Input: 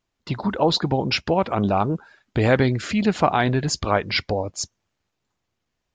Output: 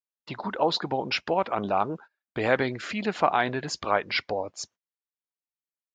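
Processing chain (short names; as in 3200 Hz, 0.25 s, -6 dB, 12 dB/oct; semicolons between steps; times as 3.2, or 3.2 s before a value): HPF 710 Hz 6 dB/oct; gate -42 dBFS, range -26 dB; LPF 2500 Hz 6 dB/oct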